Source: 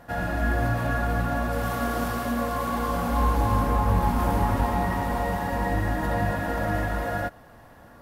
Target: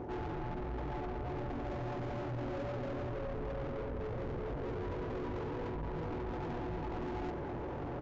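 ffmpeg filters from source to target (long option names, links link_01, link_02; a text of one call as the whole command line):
ffmpeg -i in.wav -filter_complex "[0:a]highpass=81,aemphasis=mode=reproduction:type=riaa,alimiter=limit=-10.5dB:level=0:latency=1:release=65,areverse,acompressor=threshold=-33dB:ratio=16,areverse,asplit=2[link_01][link_02];[link_02]highpass=frequency=720:poles=1,volume=34dB,asoftclip=type=tanh:threshold=-27dB[link_03];[link_01][link_03]amix=inputs=2:normalize=0,lowpass=frequency=3400:poles=1,volume=-6dB,asetrate=22696,aresample=44100,atempo=1.94306,aresample=16000,aresample=44100,volume=-5dB" out.wav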